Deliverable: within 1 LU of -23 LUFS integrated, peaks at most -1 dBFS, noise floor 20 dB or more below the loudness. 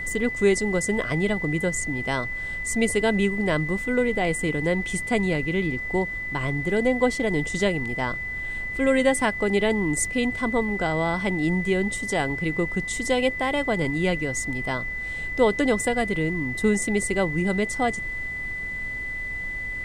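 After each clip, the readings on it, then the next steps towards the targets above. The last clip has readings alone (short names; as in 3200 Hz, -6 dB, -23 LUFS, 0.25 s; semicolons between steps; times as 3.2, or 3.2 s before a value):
steady tone 2000 Hz; tone level -29 dBFS; noise floor -31 dBFS; noise floor target -45 dBFS; loudness -24.5 LUFS; peak -7.5 dBFS; loudness target -23.0 LUFS
-> notch 2000 Hz, Q 30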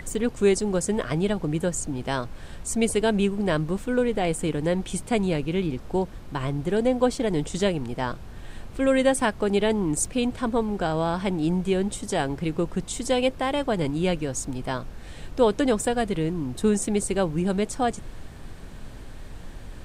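steady tone none; noise floor -40 dBFS; noise floor target -46 dBFS
-> noise print and reduce 6 dB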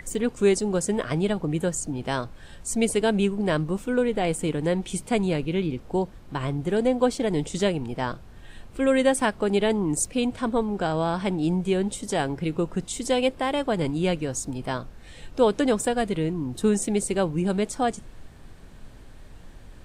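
noise floor -46 dBFS; loudness -25.5 LUFS; peak -8.0 dBFS; loudness target -23.0 LUFS
-> gain +2.5 dB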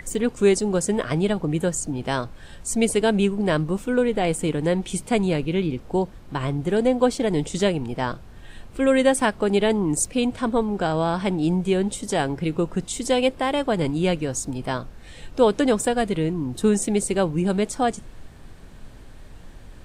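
loudness -23.0 LUFS; peak -5.5 dBFS; noise floor -43 dBFS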